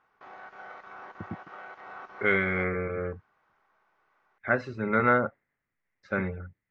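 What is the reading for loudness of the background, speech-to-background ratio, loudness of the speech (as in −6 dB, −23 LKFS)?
−45.5 LKFS, 17.5 dB, −28.0 LKFS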